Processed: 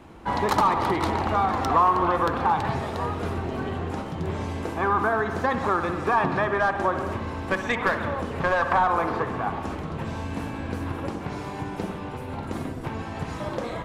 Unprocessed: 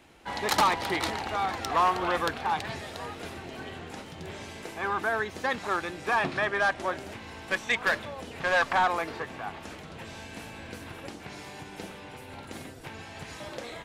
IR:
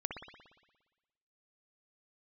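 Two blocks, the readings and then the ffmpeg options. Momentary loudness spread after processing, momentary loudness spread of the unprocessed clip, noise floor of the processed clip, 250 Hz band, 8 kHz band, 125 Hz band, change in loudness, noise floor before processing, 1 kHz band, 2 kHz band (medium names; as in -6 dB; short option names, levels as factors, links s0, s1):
11 LU, 17 LU, -35 dBFS, +9.5 dB, no reading, +12.5 dB, +3.0 dB, -45 dBFS, +6.0 dB, +0.5 dB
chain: -filter_complex "[0:a]tiltshelf=f=650:g=7.5,asplit=2[s0][s1];[1:a]atrim=start_sample=2205[s2];[s1][s2]afir=irnorm=-1:irlink=0,volume=0.75[s3];[s0][s3]amix=inputs=2:normalize=0,acompressor=threshold=0.0631:ratio=6,equalizer=f=1100:w=1.8:g=9,volume=1.26"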